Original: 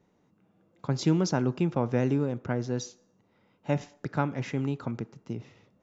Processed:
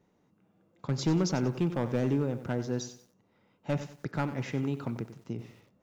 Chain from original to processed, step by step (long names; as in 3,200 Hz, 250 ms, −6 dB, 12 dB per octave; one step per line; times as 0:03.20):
gain into a clipping stage and back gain 19 dB
feedback echo at a low word length 93 ms, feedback 35%, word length 9 bits, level −12 dB
level −1.5 dB